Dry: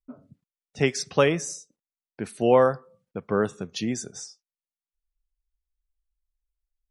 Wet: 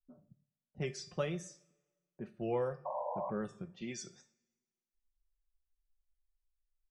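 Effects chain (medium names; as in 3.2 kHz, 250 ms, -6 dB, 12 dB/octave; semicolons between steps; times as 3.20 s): 3.81–4.21 s: frequency weighting D; level-controlled noise filter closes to 640 Hz, open at -20.5 dBFS; bass shelf 230 Hz +10 dB; comb 5.6 ms, depth 59%; in parallel at -3 dB: compression, threshold -22 dBFS, peak gain reduction 12.5 dB; 2.85–3.31 s: on the sum: painted sound noise 500–1100 Hz -18 dBFS; wow and flutter 84 cents; feedback comb 600 Hz, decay 0.33 s, mix 80%; two-slope reverb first 0.54 s, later 1.5 s, from -17 dB, DRR 14.5 dB; trim -8.5 dB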